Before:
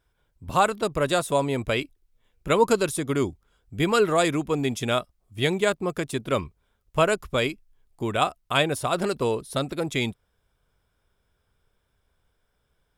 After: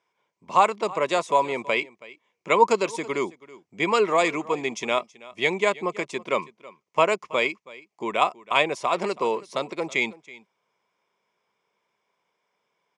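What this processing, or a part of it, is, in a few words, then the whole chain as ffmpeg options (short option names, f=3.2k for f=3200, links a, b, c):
television speaker: -af "highpass=f=210:w=0.5412,highpass=f=210:w=1.3066,equalizer=f=270:t=q:w=4:g=-9,equalizer=f=1k:t=q:w=4:g=9,equalizer=f=1.5k:t=q:w=4:g=-8,equalizer=f=2.2k:t=q:w=4:g=9,equalizer=f=3.8k:t=q:w=4:g=-5,equalizer=f=6.2k:t=q:w=4:g=4,lowpass=f=6.8k:w=0.5412,lowpass=f=6.8k:w=1.3066,aecho=1:1:325:0.1"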